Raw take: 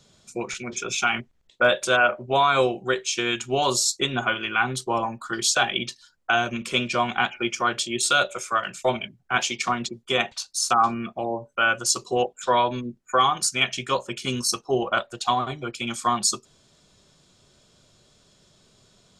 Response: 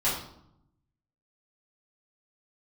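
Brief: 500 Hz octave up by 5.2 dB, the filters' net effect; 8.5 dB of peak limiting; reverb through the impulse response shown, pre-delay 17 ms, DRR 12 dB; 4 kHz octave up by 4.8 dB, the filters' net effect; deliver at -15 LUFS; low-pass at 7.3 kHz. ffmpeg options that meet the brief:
-filter_complex "[0:a]lowpass=7300,equalizer=f=500:t=o:g=6.5,equalizer=f=4000:t=o:g=6.5,alimiter=limit=0.237:level=0:latency=1,asplit=2[s0][s1];[1:a]atrim=start_sample=2205,adelay=17[s2];[s1][s2]afir=irnorm=-1:irlink=0,volume=0.0708[s3];[s0][s3]amix=inputs=2:normalize=0,volume=2.82"

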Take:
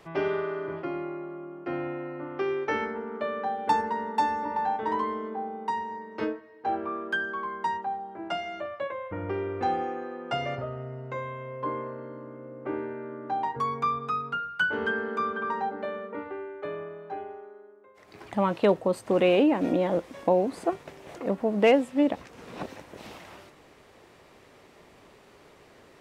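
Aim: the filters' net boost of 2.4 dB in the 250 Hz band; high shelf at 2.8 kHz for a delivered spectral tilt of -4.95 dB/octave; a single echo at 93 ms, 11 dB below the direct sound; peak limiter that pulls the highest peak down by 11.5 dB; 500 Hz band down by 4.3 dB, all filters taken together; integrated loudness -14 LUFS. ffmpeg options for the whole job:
-af "equalizer=f=250:t=o:g=5.5,equalizer=f=500:t=o:g=-7,highshelf=f=2800:g=-3.5,alimiter=limit=0.0708:level=0:latency=1,aecho=1:1:93:0.282,volume=10"

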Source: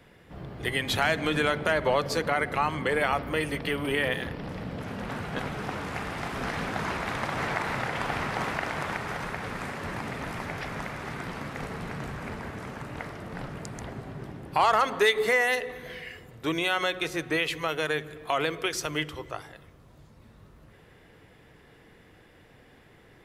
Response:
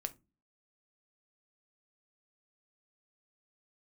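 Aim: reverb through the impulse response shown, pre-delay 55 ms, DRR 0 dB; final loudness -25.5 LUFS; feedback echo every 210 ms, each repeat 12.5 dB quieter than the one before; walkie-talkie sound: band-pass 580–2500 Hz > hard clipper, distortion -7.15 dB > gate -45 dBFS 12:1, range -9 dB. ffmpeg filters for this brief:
-filter_complex "[0:a]aecho=1:1:210|420|630:0.237|0.0569|0.0137,asplit=2[s0][s1];[1:a]atrim=start_sample=2205,adelay=55[s2];[s1][s2]afir=irnorm=-1:irlink=0,volume=1.19[s3];[s0][s3]amix=inputs=2:normalize=0,highpass=580,lowpass=2500,asoftclip=type=hard:threshold=0.0501,agate=range=0.355:threshold=0.00562:ratio=12,volume=2"

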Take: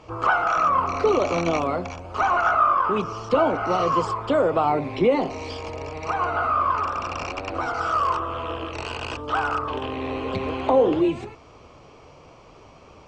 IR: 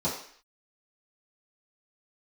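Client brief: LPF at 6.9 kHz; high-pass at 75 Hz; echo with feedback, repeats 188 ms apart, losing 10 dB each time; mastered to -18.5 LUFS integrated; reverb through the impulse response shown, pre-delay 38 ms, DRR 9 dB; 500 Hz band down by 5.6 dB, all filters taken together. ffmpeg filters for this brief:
-filter_complex "[0:a]highpass=75,lowpass=6900,equalizer=f=500:t=o:g=-7,aecho=1:1:188|376|564|752:0.316|0.101|0.0324|0.0104,asplit=2[s0][s1];[1:a]atrim=start_sample=2205,adelay=38[s2];[s1][s2]afir=irnorm=-1:irlink=0,volume=0.126[s3];[s0][s3]amix=inputs=2:normalize=0,volume=1.88"

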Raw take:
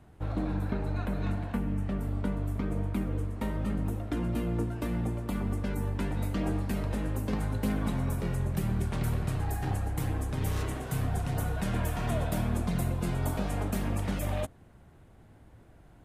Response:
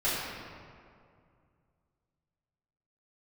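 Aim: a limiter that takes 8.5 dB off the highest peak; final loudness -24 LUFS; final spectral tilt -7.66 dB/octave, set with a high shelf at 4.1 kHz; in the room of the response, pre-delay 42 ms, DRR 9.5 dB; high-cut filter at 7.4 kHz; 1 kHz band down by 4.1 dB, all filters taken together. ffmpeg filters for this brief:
-filter_complex "[0:a]lowpass=7400,equalizer=f=1000:t=o:g=-5.5,highshelf=f=4100:g=-3,alimiter=level_in=1.26:limit=0.0631:level=0:latency=1,volume=0.794,asplit=2[s0][s1];[1:a]atrim=start_sample=2205,adelay=42[s2];[s1][s2]afir=irnorm=-1:irlink=0,volume=0.0944[s3];[s0][s3]amix=inputs=2:normalize=0,volume=3.55"

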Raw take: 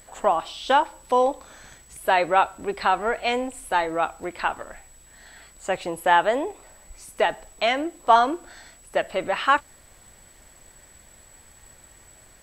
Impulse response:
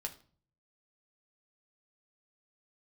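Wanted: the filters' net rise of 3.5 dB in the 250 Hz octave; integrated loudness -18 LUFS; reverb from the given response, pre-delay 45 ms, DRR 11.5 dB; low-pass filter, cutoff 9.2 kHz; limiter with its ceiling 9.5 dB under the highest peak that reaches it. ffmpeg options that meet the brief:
-filter_complex "[0:a]lowpass=9200,equalizer=f=250:t=o:g=4.5,alimiter=limit=0.211:level=0:latency=1,asplit=2[s0][s1];[1:a]atrim=start_sample=2205,adelay=45[s2];[s1][s2]afir=irnorm=-1:irlink=0,volume=0.299[s3];[s0][s3]amix=inputs=2:normalize=0,volume=2.51"

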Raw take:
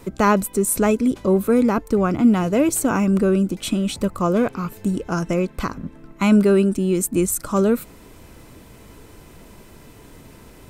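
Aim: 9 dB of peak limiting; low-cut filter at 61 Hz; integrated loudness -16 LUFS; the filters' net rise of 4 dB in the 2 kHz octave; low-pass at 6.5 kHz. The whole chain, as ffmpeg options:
-af "highpass=61,lowpass=6500,equalizer=f=2000:t=o:g=5.5,volume=2.11,alimiter=limit=0.501:level=0:latency=1"

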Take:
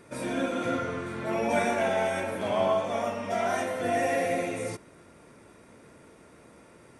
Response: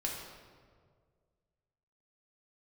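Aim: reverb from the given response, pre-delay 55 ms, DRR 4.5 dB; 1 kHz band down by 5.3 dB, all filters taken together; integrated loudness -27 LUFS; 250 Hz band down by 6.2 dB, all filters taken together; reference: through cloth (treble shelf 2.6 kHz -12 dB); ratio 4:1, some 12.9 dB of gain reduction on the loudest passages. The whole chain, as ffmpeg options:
-filter_complex "[0:a]equalizer=f=250:t=o:g=-7.5,equalizer=f=1000:t=o:g=-6,acompressor=threshold=0.00891:ratio=4,asplit=2[s0][s1];[1:a]atrim=start_sample=2205,adelay=55[s2];[s1][s2]afir=irnorm=-1:irlink=0,volume=0.422[s3];[s0][s3]amix=inputs=2:normalize=0,highshelf=f=2600:g=-12,volume=5.96"

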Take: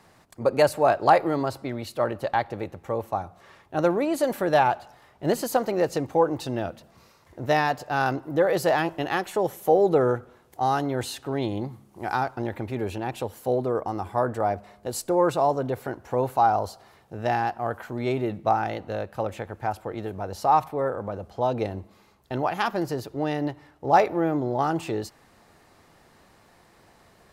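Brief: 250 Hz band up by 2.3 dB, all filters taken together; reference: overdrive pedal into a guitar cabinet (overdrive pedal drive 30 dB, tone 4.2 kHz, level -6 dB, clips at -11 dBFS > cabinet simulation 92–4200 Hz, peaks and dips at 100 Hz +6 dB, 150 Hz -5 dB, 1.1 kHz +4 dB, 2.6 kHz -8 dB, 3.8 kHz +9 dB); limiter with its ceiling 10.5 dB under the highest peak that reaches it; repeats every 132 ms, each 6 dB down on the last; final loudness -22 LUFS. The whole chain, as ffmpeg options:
-filter_complex "[0:a]equalizer=f=250:t=o:g=3.5,alimiter=limit=0.178:level=0:latency=1,aecho=1:1:132|264|396|528|660|792:0.501|0.251|0.125|0.0626|0.0313|0.0157,asplit=2[s0][s1];[s1]highpass=f=720:p=1,volume=31.6,asoftclip=type=tanh:threshold=0.282[s2];[s0][s2]amix=inputs=2:normalize=0,lowpass=f=4200:p=1,volume=0.501,highpass=92,equalizer=f=100:t=q:w=4:g=6,equalizer=f=150:t=q:w=4:g=-5,equalizer=f=1100:t=q:w=4:g=4,equalizer=f=2600:t=q:w=4:g=-8,equalizer=f=3800:t=q:w=4:g=9,lowpass=f=4200:w=0.5412,lowpass=f=4200:w=1.3066,volume=0.668"

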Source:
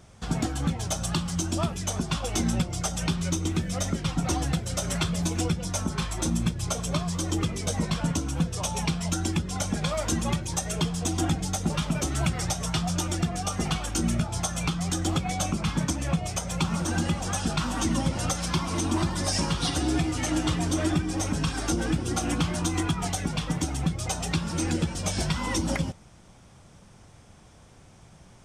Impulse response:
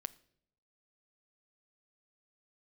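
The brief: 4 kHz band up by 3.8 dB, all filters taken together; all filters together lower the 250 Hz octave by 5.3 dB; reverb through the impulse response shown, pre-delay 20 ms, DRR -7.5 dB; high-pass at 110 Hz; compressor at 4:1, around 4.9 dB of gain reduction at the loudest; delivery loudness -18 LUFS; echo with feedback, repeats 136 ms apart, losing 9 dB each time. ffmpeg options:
-filter_complex "[0:a]highpass=110,equalizer=f=250:t=o:g=-8,equalizer=f=4000:t=o:g=5,acompressor=threshold=0.0355:ratio=4,aecho=1:1:136|272|408|544:0.355|0.124|0.0435|0.0152,asplit=2[s0][s1];[1:a]atrim=start_sample=2205,adelay=20[s2];[s1][s2]afir=irnorm=-1:irlink=0,volume=3.16[s3];[s0][s3]amix=inputs=2:normalize=0,volume=2"

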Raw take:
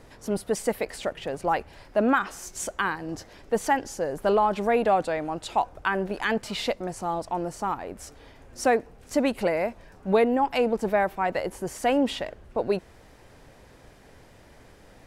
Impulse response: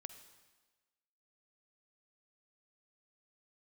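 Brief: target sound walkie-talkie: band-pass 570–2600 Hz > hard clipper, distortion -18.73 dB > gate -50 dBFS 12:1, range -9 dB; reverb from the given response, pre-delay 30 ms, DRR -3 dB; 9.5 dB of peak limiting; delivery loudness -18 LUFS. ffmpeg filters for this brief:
-filter_complex "[0:a]alimiter=limit=0.1:level=0:latency=1,asplit=2[s0][s1];[1:a]atrim=start_sample=2205,adelay=30[s2];[s1][s2]afir=irnorm=-1:irlink=0,volume=2.51[s3];[s0][s3]amix=inputs=2:normalize=0,highpass=570,lowpass=2600,asoftclip=type=hard:threshold=0.0944,agate=range=0.355:threshold=0.00316:ratio=12,volume=4.22"

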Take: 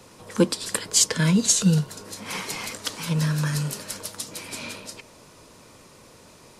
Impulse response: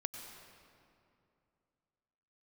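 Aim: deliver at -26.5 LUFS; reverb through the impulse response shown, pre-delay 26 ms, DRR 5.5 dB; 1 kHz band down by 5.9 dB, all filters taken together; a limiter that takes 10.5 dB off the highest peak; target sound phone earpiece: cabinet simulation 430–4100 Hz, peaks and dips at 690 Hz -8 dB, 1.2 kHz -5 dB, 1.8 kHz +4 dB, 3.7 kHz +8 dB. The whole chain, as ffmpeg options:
-filter_complex "[0:a]equalizer=f=1000:t=o:g=-3.5,alimiter=limit=0.168:level=0:latency=1,asplit=2[s0][s1];[1:a]atrim=start_sample=2205,adelay=26[s2];[s1][s2]afir=irnorm=-1:irlink=0,volume=0.562[s3];[s0][s3]amix=inputs=2:normalize=0,highpass=430,equalizer=f=690:t=q:w=4:g=-8,equalizer=f=1200:t=q:w=4:g=-5,equalizer=f=1800:t=q:w=4:g=4,equalizer=f=3700:t=q:w=4:g=8,lowpass=f=4100:w=0.5412,lowpass=f=4100:w=1.3066,volume=2"

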